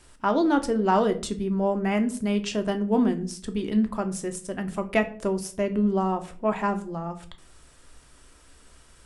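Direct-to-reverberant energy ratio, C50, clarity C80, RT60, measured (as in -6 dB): 7.0 dB, 15.0 dB, 19.0 dB, 0.45 s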